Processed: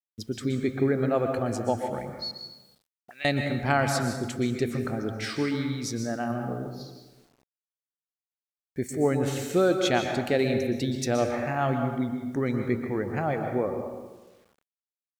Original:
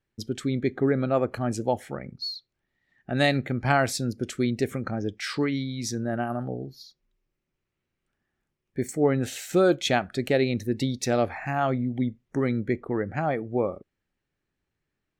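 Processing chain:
0:02.31–0:03.25: envelope filter 210–2,400 Hz, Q 5.2, up, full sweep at −32 dBFS
dense smooth reverb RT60 1.2 s, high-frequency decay 0.6×, pre-delay 110 ms, DRR 4.5 dB
bit reduction 10 bits
level −2 dB

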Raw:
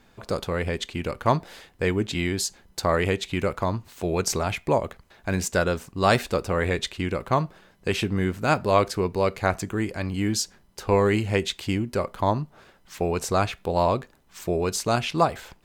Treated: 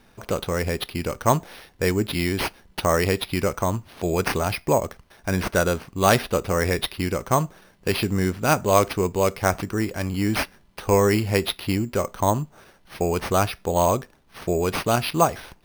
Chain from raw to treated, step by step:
decimation without filtering 6×
level +2 dB

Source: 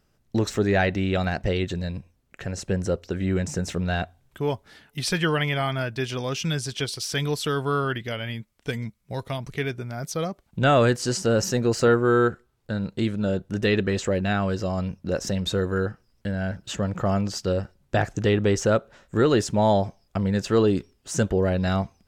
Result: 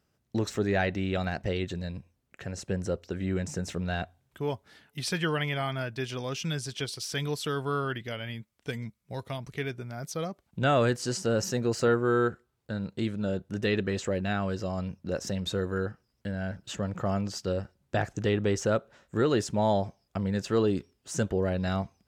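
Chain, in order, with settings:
high-pass filter 61 Hz
level −5.5 dB

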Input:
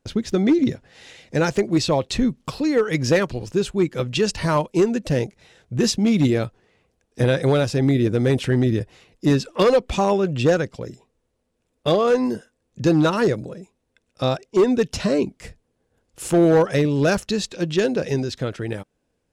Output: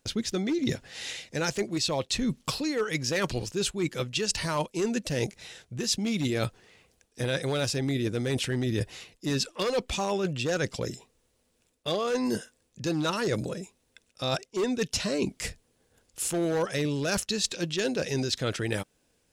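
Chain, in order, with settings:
high-shelf EQ 2,100 Hz +12 dB
reversed playback
downward compressor 12 to 1, threshold −25 dBFS, peak gain reduction 17.5 dB
reversed playback

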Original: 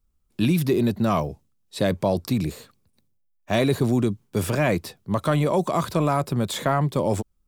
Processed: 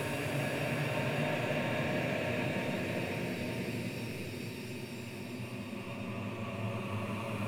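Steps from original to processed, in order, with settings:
loose part that buzzes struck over −22 dBFS, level −14 dBFS
tuned comb filter 910 Hz, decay 0.35 s, mix 80%
on a send: feedback echo with a long and a short gap by turns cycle 1,070 ms, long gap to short 3 to 1, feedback 53%, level −8.5 dB
on the sum: extreme stretch with random phases 12×, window 0.50 s, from 0:04.53

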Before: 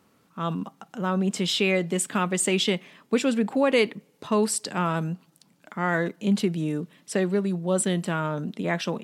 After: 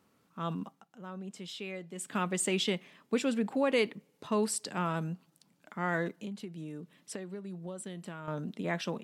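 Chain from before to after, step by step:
0:00.64–0:02.18: duck −11 dB, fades 0.23 s
0:06.14–0:08.28: downward compressor 10 to 1, threshold −31 dBFS, peak gain reduction 13.5 dB
level −7 dB

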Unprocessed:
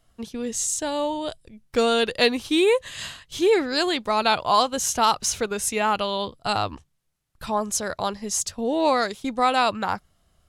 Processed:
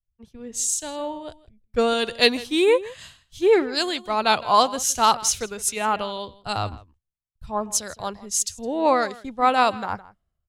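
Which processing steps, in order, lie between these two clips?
slap from a distant wall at 28 metres, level −15 dB
multiband upward and downward expander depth 100%
level −1 dB

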